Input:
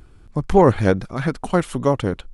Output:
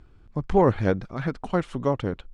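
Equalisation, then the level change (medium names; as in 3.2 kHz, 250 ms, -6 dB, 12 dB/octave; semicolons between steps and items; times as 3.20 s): distance through air 100 m; -5.5 dB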